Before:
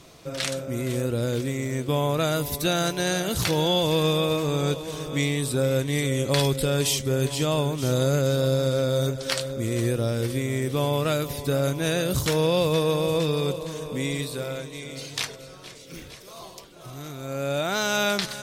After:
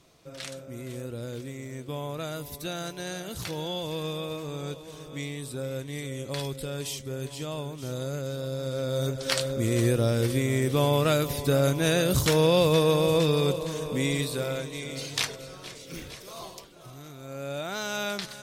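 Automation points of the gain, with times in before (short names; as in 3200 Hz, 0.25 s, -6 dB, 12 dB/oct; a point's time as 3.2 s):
8.5 s -10.5 dB
9.42 s +1 dB
16.44 s +1 dB
17.03 s -7.5 dB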